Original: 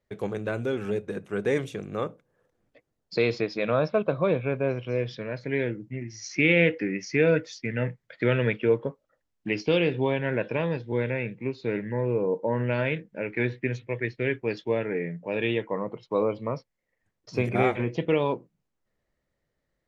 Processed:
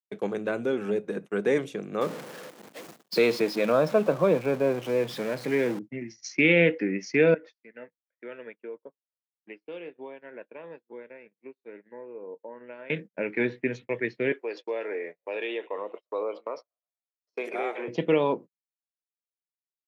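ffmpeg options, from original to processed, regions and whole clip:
-filter_complex "[0:a]asettb=1/sr,asplit=3[s0][s1][s2];[s0]atrim=end=2.014[s3];[s1]atrim=start=2.01:end=5.79,asetpts=PTS-STARTPTS,afade=t=in:d=0.004:c=qsin,afade=t=out:st=3.776:d=0.004:c=qsin,aeval=exprs='val(0)+0.5*0.0211*sgn(val(0))':c=same,highpass=f=94:w=0.5412,highpass=f=94:w=1.3066[s4];[s2]atrim=start=5.786[s5];[s3][s4]acrossfade=d=0.004:c1=hsin:c2=qsin[s6];[s6][s5]acrossfade=d=0.004:c1=qsin:c2=hsin,asettb=1/sr,asplit=3[s7][s8][s9];[s7]atrim=end=7.344[s10];[s8]atrim=start=7.34:end=12.9,asetpts=PTS-STARTPTS,afade=t=in:d=0.004:c=qsin,afade=t=out:st=5.556:d=0.004:c=qsin,highpass=310,lowpass=2300,acompressor=threshold=0.0141:ratio=6:attack=3.2:release=140:knee=1:detection=peak[s11];[s9]atrim=start=12.896[s12];[s10][s11]acrossfade=d=0.004:c1=hsin:c2=qsin[s13];[s13][s12]acrossfade=d=0.004:c1=qsin:c2=hsin,asettb=1/sr,asplit=3[s14][s15][s16];[s14]atrim=end=14.324[s17];[s15]atrim=start=14.32:end=17.88,asetpts=PTS-STARTPTS,afade=t=in:d=0.004:c=qsin,afade=t=out:st=3.556:d=0.004:c=qsin,highpass=f=370:w=0.5412,highpass=f=370:w=1.3066,asplit=5[s18][s19][s20][s21][s22];[s19]adelay=120,afreqshift=45,volume=0.0631[s23];[s20]adelay=240,afreqshift=90,volume=0.0347[s24];[s21]adelay=360,afreqshift=135,volume=0.0191[s25];[s22]adelay=480,afreqshift=180,volume=0.0105[s26];[s18][s23][s24][s25][s26]amix=inputs=5:normalize=0,atrim=end_sample=156996,acompressor=threshold=0.0251:ratio=2:attack=3.2:release=140:knee=1:detection=peak[s27];[s16]atrim=start=17.876[s28];[s17][s27]acrossfade=d=0.004:c1=hsin:c2=qsin[s29];[s29][s28]acrossfade=d=0.004:c1=qsin:c2=hsin,agate=range=0.00794:threshold=0.0112:ratio=16:detection=peak,highpass=f=170:w=0.5412,highpass=f=170:w=1.3066,adynamicequalizer=threshold=0.00891:dfrequency=1600:dqfactor=0.7:tfrequency=1600:tqfactor=0.7:attack=5:release=100:ratio=0.375:range=3:mode=cutabove:tftype=highshelf,volume=1.19"

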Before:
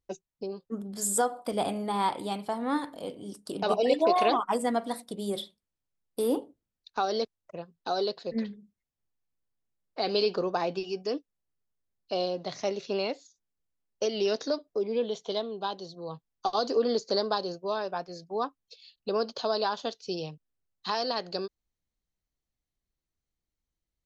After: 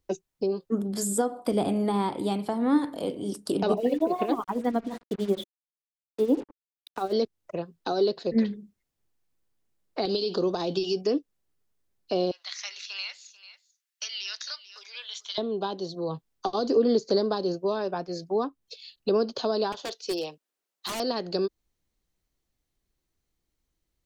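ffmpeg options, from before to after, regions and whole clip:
-filter_complex "[0:a]asettb=1/sr,asplit=3[s0][s1][s2];[s0]atrim=end=3.774[s3];[s1]atrim=start=3.77:end=7.13,asetpts=PTS-STARTPTS,afade=t=in:d=0.004:c=qsin,afade=t=out:st=3.356:d=0.004:c=qsin,tremolo=f=11:d=0.82,lowpass=3000,acrusher=bits=7:mix=0:aa=0.5[s4];[s2]atrim=start=7.126[s5];[s3][s4]acrossfade=d=0.004:c1=hsin:c2=qsin[s6];[s6][s5]acrossfade=d=0.004:c1=qsin:c2=hsin,asettb=1/sr,asplit=3[s7][s8][s9];[s7]atrim=end=10.054[s10];[s8]atrim=start=10.05:end=11.01,asetpts=PTS-STARTPTS,afade=t=in:d=0.004:c=qsin,afade=t=out:st=0.956:d=0.004:c=qsin,highshelf=f=2800:t=q:w=3:g=6,acompressor=threshold=0.0398:ratio=4:attack=3.2:release=140:knee=1:detection=peak[s11];[s9]atrim=start=11.006[s12];[s10][s11]acrossfade=d=0.004:c1=hsin:c2=qsin[s13];[s13][s12]acrossfade=d=0.004:c1=qsin:c2=hsin,asettb=1/sr,asplit=3[s14][s15][s16];[s14]atrim=end=12.314[s17];[s15]atrim=start=12.31:end=15.38,asetpts=PTS-STARTPTS,afade=t=in:d=0.004:c=qsin,afade=t=out:st=3.066:d=0.004:c=qsin,highpass=f=1500:w=0.5412,highpass=f=1500:w=1.3066,aecho=1:1:441:0.112,atrim=end_sample=135387[s18];[s16]atrim=start=15.376[s19];[s17][s18]acrossfade=d=0.004:c1=hsin:c2=qsin[s20];[s20][s19]acrossfade=d=0.004:c1=qsin:c2=hsin,asettb=1/sr,asplit=3[s21][s22][s23];[s21]atrim=end=19.724[s24];[s22]atrim=start=19.72:end=21,asetpts=PTS-STARTPTS,afade=t=in:d=0.004:c=qsin,afade=t=out:st=1.276:d=0.004:c=qsin,highpass=440,aeval=exprs='0.0282*(abs(mod(val(0)/0.0282+3,4)-2)-1)':c=same[s25];[s23]atrim=start=20.996[s26];[s24][s25]acrossfade=d=0.004:c1=hsin:c2=qsin[s27];[s27][s26]acrossfade=d=0.004:c1=qsin:c2=hsin,acrossover=split=380[s28][s29];[s29]acompressor=threshold=0.01:ratio=3[s30];[s28][s30]amix=inputs=2:normalize=0,equalizer=f=350:t=o:w=0.64:g=4,volume=2.37"

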